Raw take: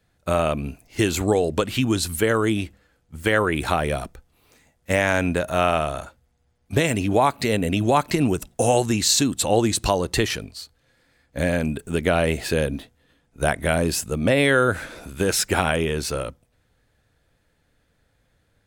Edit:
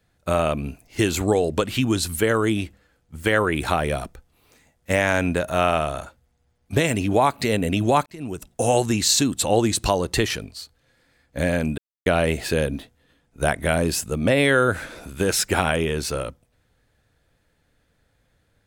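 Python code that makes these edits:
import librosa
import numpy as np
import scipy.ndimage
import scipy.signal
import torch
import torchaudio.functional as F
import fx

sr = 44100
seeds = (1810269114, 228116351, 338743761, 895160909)

y = fx.edit(x, sr, fx.fade_in_span(start_s=8.06, length_s=0.7),
    fx.silence(start_s=11.78, length_s=0.28), tone=tone)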